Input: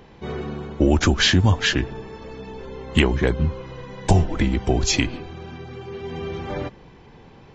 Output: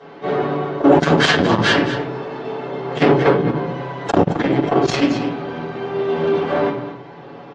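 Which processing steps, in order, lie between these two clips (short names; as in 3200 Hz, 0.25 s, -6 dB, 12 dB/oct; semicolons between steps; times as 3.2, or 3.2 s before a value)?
minimum comb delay 7.1 ms; air absorption 140 m; echo 0.22 s -12.5 dB; reverb RT60 0.40 s, pre-delay 4 ms, DRR -7 dB; soft clip -3.5 dBFS, distortion -10 dB; HPF 240 Hz 12 dB/oct; bell 2400 Hz -6 dB 0.29 oct; gain +3.5 dB; MP3 40 kbps 22050 Hz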